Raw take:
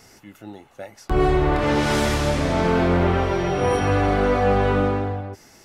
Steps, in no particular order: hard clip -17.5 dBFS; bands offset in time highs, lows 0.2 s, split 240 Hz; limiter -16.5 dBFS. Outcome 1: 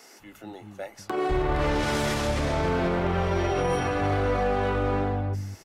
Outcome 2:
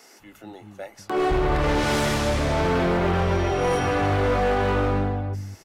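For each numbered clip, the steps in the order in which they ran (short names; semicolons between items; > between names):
limiter > bands offset in time > hard clip; bands offset in time > hard clip > limiter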